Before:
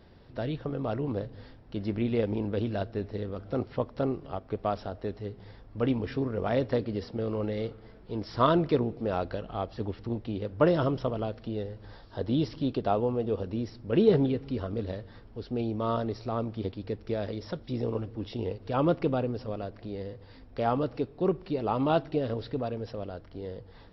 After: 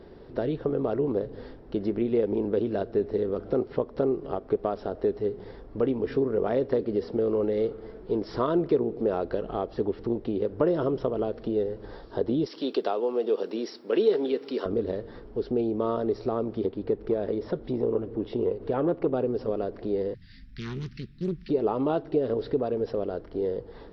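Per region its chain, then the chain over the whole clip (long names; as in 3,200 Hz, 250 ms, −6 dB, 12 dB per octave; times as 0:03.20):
0:12.46–0:14.66: high-pass filter 200 Hz 24 dB per octave + spectral tilt +4 dB per octave
0:16.66–0:19.14: upward compression, threshold −39 dBFS + high-frequency loss of the air 160 metres + saturating transformer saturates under 410 Hz
0:20.14–0:21.49: elliptic band-stop filter 200–1,800 Hz, stop band 60 dB + high-shelf EQ 4,200 Hz +8 dB + highs frequency-modulated by the lows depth 0.62 ms
whole clip: high-shelf EQ 4,000 Hz −8.5 dB; downward compressor 3 to 1, threshold −34 dBFS; graphic EQ with 15 bands 100 Hz −8 dB, 400 Hz +10 dB, 2,500 Hz −3 dB; level +5.5 dB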